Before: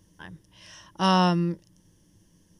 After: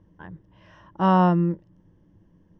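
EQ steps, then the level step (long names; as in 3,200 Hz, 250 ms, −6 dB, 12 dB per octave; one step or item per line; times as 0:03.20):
low-pass filter 1,300 Hz 12 dB per octave
+3.5 dB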